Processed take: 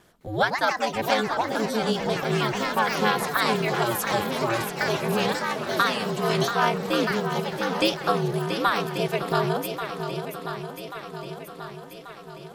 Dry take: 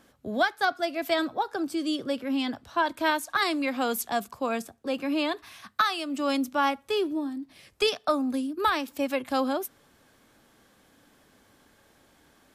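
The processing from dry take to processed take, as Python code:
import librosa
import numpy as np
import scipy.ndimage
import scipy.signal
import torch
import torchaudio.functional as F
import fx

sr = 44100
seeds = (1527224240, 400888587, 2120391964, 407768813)

y = fx.echo_swing(x, sr, ms=1136, ratio=1.5, feedback_pct=54, wet_db=-8.5)
y = y * np.sin(2.0 * np.pi * 110.0 * np.arange(len(y)) / sr)
y = fx.echo_pitch(y, sr, ms=209, semitones=4, count=3, db_per_echo=-6.0)
y = y * 10.0 ** (4.5 / 20.0)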